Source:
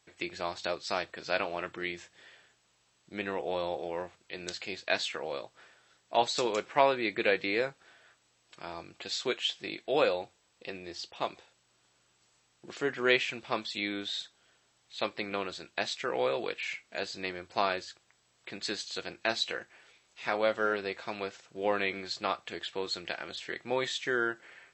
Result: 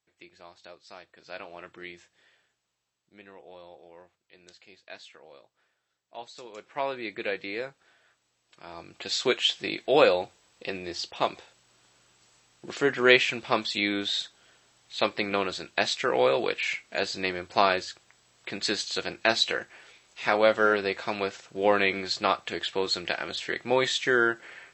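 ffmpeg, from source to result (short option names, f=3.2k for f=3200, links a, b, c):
-af "volume=16dB,afade=t=in:st=1.02:d=0.81:silence=0.375837,afade=t=out:st=1.83:d=1.37:silence=0.354813,afade=t=in:st=6.5:d=0.47:silence=0.281838,afade=t=in:st=8.64:d=0.63:silence=0.281838"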